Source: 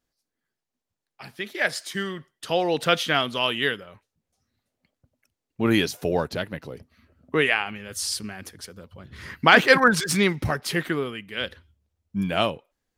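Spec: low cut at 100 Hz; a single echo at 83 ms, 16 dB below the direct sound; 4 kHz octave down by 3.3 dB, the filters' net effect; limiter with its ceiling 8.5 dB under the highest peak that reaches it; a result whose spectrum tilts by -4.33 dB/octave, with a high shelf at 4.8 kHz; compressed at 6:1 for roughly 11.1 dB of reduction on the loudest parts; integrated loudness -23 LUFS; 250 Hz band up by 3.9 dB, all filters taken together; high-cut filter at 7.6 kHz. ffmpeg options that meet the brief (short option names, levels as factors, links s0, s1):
-af "highpass=100,lowpass=7600,equalizer=f=250:t=o:g=5.5,equalizer=f=4000:t=o:g=-7,highshelf=f=4800:g=5,acompressor=threshold=0.0891:ratio=6,alimiter=limit=0.133:level=0:latency=1,aecho=1:1:83:0.158,volume=2.24"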